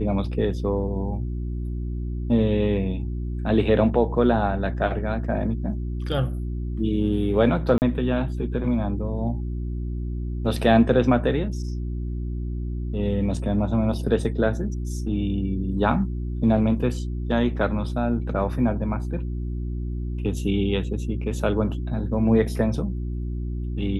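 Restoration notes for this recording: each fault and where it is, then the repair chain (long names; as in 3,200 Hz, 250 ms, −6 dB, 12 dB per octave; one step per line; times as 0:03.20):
mains hum 60 Hz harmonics 6 −28 dBFS
0:07.78–0:07.82: drop-out 39 ms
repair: hum removal 60 Hz, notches 6
repair the gap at 0:07.78, 39 ms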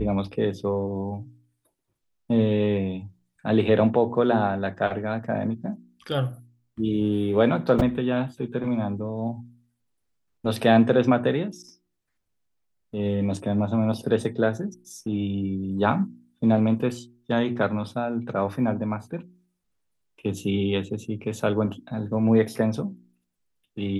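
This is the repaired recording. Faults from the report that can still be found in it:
none of them is left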